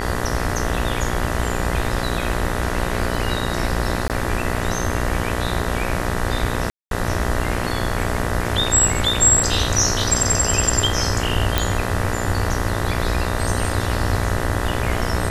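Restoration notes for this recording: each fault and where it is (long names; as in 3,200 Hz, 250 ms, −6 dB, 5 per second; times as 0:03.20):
mains buzz 60 Hz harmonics 33 −25 dBFS
0:04.08–0:04.10: drop-out 18 ms
0:06.70–0:06.91: drop-out 212 ms
0:11.58: click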